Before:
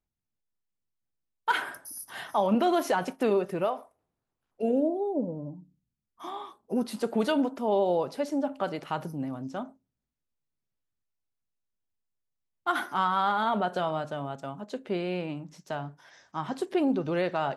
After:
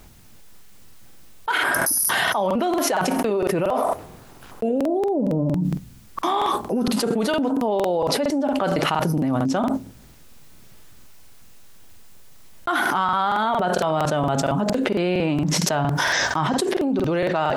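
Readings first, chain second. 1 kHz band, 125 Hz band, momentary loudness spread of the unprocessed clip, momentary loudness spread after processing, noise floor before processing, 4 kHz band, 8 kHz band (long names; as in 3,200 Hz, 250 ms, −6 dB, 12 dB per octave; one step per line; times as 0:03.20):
+7.5 dB, +13.5 dB, 14 LU, 5 LU, −85 dBFS, +12.5 dB, +20.0 dB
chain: regular buffer underruns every 0.23 s, samples 2,048, repeat, from 0:00.62
envelope flattener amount 100%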